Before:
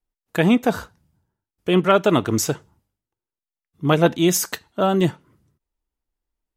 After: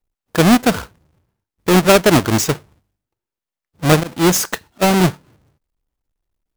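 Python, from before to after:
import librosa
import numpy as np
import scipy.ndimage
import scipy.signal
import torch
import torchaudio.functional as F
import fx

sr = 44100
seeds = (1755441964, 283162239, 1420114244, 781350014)

y = fx.halfwave_hold(x, sr)
y = fx.auto_swell(y, sr, attack_ms=245.0, at=(3.99, 4.81), fade=0.02)
y = F.gain(torch.from_numpy(y), 1.0).numpy()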